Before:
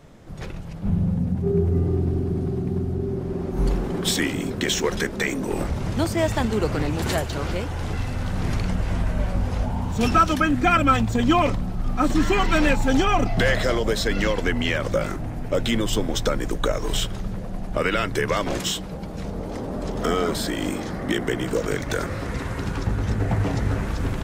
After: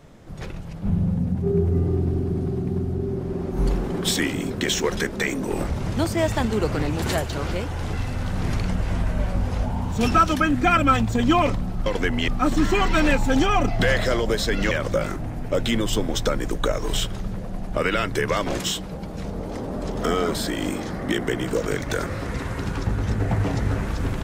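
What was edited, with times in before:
14.29–14.71 s: move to 11.86 s

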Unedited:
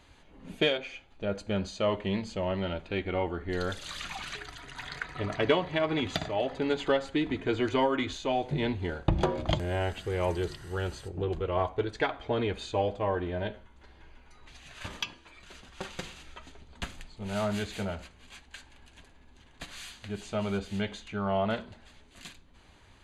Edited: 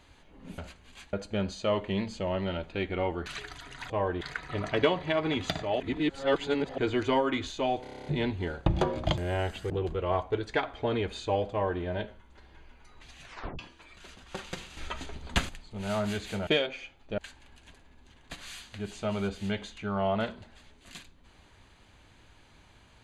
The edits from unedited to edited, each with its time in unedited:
0.58–1.29 s: swap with 17.93–18.48 s
3.42–4.23 s: delete
6.46–7.44 s: reverse
8.48 s: stutter 0.03 s, 9 plays
10.12–11.16 s: delete
12.97–13.28 s: copy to 4.87 s
14.71 s: tape stop 0.34 s
16.23–16.95 s: gain +10 dB

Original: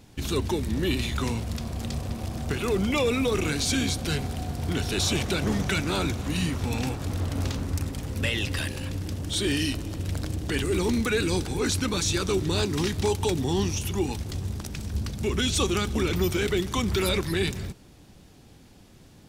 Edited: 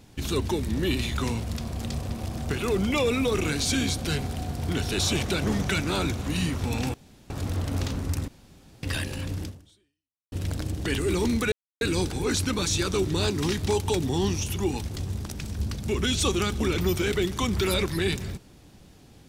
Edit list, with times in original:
6.94 s: insert room tone 0.36 s
7.92–8.47 s: room tone
9.08–9.96 s: fade out exponential
11.16 s: insert silence 0.29 s

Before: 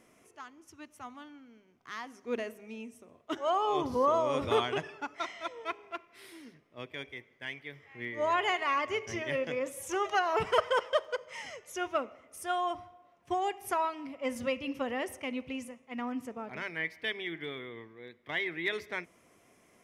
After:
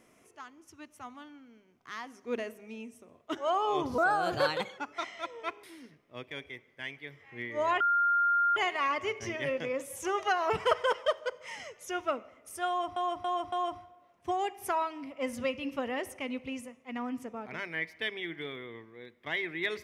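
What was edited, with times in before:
3.98–5.00 s: speed 127%
5.85–6.26 s: delete
8.43 s: add tone 1.4 kHz -23 dBFS 0.76 s
12.55–12.83 s: loop, 4 plays

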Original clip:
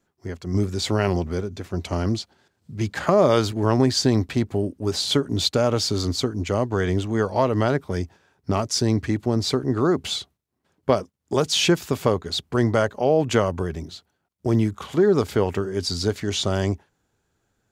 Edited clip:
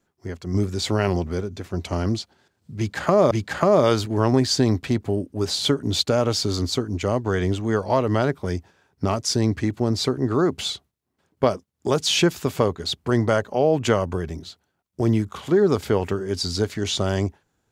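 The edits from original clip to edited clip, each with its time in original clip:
2.77–3.31 s: loop, 2 plays

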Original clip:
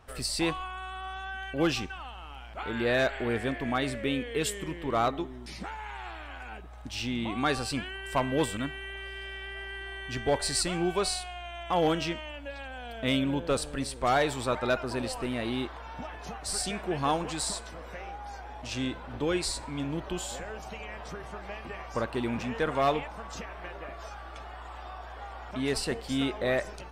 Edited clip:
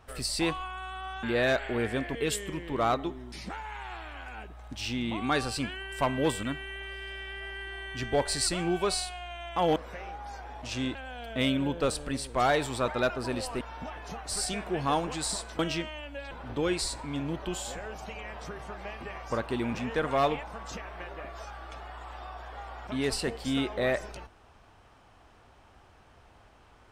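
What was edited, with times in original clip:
1.23–2.74 s: delete
3.66–4.29 s: delete
11.90–12.62 s: swap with 17.76–18.95 s
15.28–15.78 s: delete

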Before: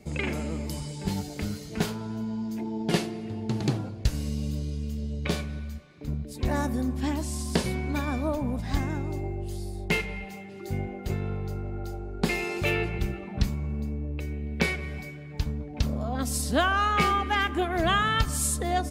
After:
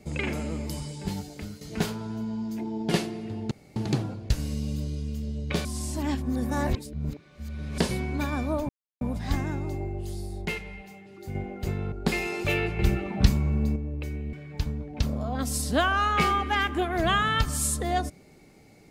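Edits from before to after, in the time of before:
0.82–1.61 s: fade out, to -9 dB
3.51 s: insert room tone 0.25 s
5.40–7.53 s: reverse
8.44 s: insert silence 0.32 s
9.89–10.78 s: gain -5.5 dB
11.35–12.09 s: delete
12.96–13.93 s: gain +6 dB
14.50–15.13 s: delete

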